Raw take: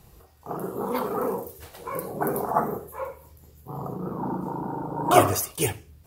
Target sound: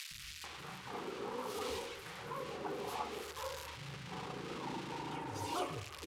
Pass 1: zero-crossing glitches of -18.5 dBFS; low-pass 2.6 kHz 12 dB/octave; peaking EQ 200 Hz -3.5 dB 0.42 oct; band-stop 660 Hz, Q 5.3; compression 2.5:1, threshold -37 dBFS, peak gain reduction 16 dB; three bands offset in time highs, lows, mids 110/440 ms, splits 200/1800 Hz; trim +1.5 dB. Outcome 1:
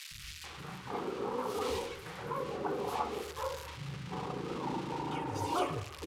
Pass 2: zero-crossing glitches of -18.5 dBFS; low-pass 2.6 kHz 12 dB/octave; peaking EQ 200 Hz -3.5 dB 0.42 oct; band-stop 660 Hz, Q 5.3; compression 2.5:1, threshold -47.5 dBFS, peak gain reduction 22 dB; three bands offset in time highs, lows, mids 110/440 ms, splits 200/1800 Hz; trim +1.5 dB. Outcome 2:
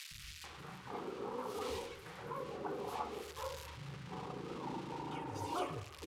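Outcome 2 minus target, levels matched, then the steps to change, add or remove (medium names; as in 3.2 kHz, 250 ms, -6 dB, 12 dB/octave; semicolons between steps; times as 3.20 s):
zero-crossing glitches: distortion -6 dB
change: zero-crossing glitches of -12 dBFS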